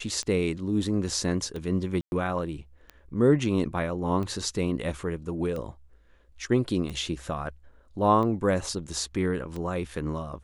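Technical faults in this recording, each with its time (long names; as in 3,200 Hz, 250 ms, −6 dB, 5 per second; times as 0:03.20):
scratch tick 45 rpm −23 dBFS
0:02.01–0:02.12: drop-out 111 ms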